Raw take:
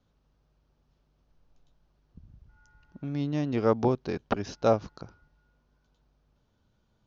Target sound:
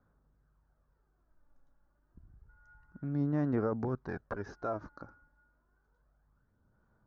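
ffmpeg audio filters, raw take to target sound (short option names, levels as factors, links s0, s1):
-af "highshelf=f=2100:t=q:w=3:g=-11,alimiter=limit=0.0944:level=0:latency=1:release=17,aphaser=in_gain=1:out_gain=1:delay=3.6:decay=0.45:speed=0.29:type=sinusoidal,volume=0.501"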